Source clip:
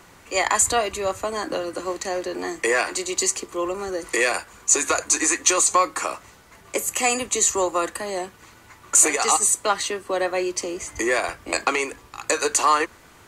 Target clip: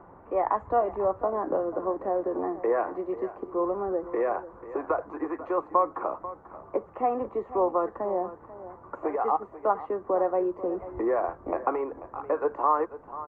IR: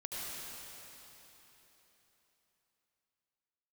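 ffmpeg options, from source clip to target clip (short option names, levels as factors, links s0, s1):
-filter_complex "[0:a]asplit=2[s0][s1];[s1]acompressor=threshold=0.0316:ratio=5,volume=1.26[s2];[s0][s2]amix=inputs=2:normalize=0,lowpass=f=1000:w=0.5412,lowpass=f=1000:w=1.3066,lowshelf=f=360:g=-8,aecho=1:1:490|980:0.188|0.0301,volume=0.841" -ar 48000 -c:a libopus -b:a 48k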